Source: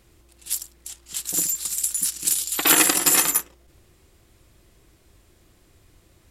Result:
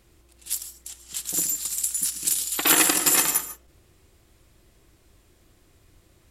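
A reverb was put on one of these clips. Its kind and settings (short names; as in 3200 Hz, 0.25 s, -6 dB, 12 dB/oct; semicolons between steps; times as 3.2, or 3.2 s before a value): non-linear reverb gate 0.17 s rising, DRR 11 dB; gain -2 dB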